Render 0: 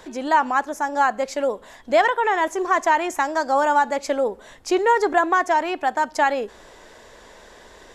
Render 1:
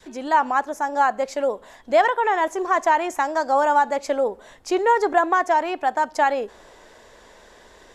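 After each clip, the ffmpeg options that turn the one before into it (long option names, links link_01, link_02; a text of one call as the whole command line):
ffmpeg -i in.wav -af "adynamicequalizer=threshold=0.0501:dfrequency=700:dqfactor=0.86:tfrequency=700:tqfactor=0.86:attack=5:release=100:ratio=0.375:range=2:mode=boostabove:tftype=bell,volume=-3dB" out.wav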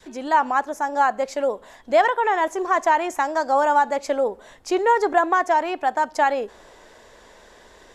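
ffmpeg -i in.wav -af anull out.wav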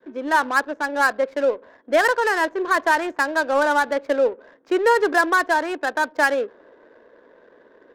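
ffmpeg -i in.wav -af "highpass=frequency=230:width=0.5412,highpass=frequency=230:width=1.3066,equalizer=frequency=290:width_type=q:width=4:gain=4,equalizer=frequency=500:width_type=q:width=4:gain=5,equalizer=frequency=780:width_type=q:width=4:gain=-8,equalizer=frequency=1600:width_type=q:width=4:gain=9,equalizer=frequency=3600:width_type=q:width=4:gain=5,lowpass=frequency=7600:width=0.5412,lowpass=frequency=7600:width=1.3066,adynamicsmooth=sensitivity=3.5:basefreq=690" out.wav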